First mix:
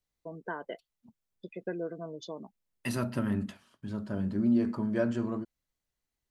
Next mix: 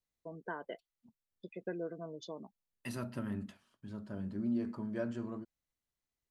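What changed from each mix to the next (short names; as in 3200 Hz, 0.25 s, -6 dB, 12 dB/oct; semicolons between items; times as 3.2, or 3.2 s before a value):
first voice -4.0 dB; second voice -8.5 dB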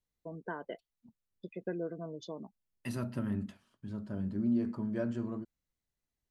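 master: add low shelf 340 Hz +6 dB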